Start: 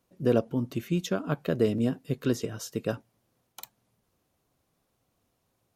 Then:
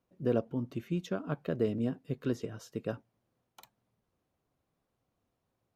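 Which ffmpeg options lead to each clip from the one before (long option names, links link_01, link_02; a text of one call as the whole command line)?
ffmpeg -i in.wav -af "highshelf=frequency=4300:gain=-11.5,volume=-5.5dB" out.wav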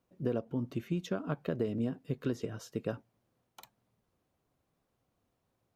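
ffmpeg -i in.wav -af "acompressor=threshold=-30dB:ratio=6,volume=2dB" out.wav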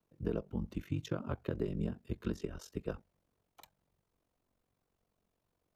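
ffmpeg -i in.wav -af "aeval=exprs='val(0)*sin(2*PI*23*n/s)':channel_layout=same,afreqshift=-50" out.wav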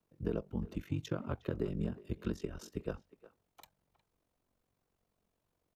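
ffmpeg -i in.wav -filter_complex "[0:a]asplit=2[link_01][link_02];[link_02]adelay=360,highpass=300,lowpass=3400,asoftclip=type=hard:threshold=-29.5dB,volume=-17dB[link_03];[link_01][link_03]amix=inputs=2:normalize=0" out.wav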